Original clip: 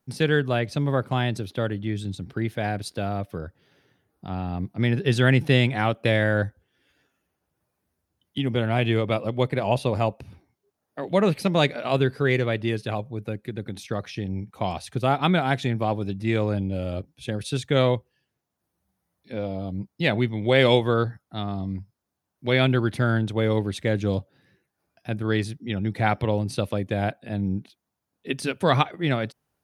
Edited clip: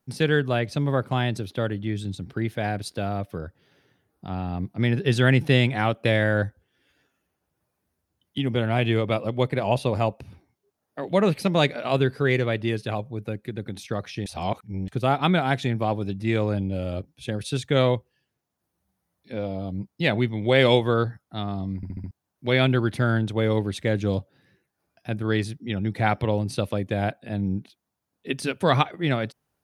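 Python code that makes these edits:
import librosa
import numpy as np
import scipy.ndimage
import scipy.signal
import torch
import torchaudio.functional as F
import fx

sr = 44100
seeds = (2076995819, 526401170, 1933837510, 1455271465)

y = fx.edit(x, sr, fx.reverse_span(start_s=14.26, length_s=0.62),
    fx.stutter_over(start_s=21.76, slice_s=0.07, count=5), tone=tone)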